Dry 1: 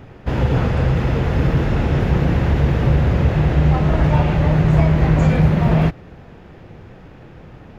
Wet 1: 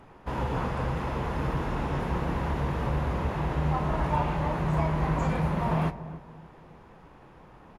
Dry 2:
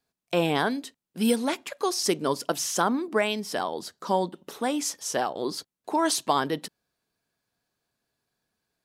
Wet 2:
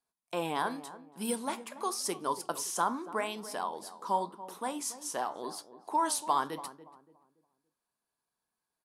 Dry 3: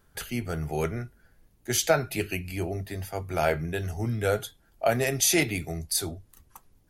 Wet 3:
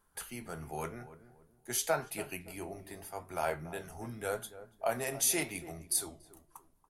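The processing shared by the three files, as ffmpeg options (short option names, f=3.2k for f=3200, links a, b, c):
-filter_complex "[0:a]equalizer=f=100:t=o:w=0.67:g=-9,equalizer=f=1k:t=o:w=0.67:g=11,equalizer=f=10k:t=o:w=0.67:g=11,flanger=delay=9.3:depth=8.2:regen=-75:speed=0.88:shape=triangular,asplit=2[a][b];[b]adelay=285,lowpass=f=910:p=1,volume=-13dB,asplit=2[c][d];[d]adelay=285,lowpass=f=910:p=1,volume=0.36,asplit=2[e][f];[f]adelay=285,lowpass=f=910:p=1,volume=0.36,asplit=2[g][h];[h]adelay=285,lowpass=f=910:p=1,volume=0.36[i];[c][e][g][i]amix=inputs=4:normalize=0[j];[a][j]amix=inputs=2:normalize=0,volume=-7dB"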